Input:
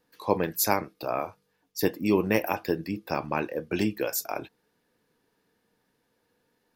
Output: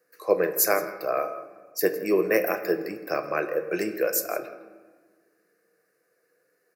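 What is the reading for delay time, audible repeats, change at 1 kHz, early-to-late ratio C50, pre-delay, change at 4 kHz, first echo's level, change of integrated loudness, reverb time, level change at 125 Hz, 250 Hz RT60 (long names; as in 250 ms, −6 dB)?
164 ms, 1, −1.0 dB, 10.5 dB, 5 ms, −1.5 dB, −18.5 dB, +2.5 dB, 1.4 s, −9.5 dB, 2.1 s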